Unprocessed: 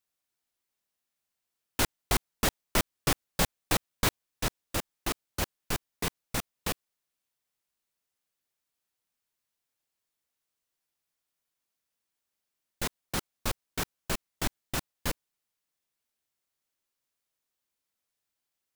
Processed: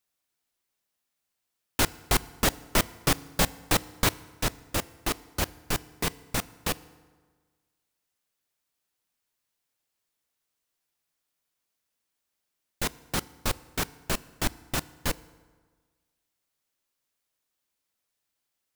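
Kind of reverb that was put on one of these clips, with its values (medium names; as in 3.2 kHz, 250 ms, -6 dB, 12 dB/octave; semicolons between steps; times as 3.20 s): FDN reverb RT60 1.5 s, low-frequency decay 1×, high-frequency decay 0.65×, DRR 18 dB; trim +3 dB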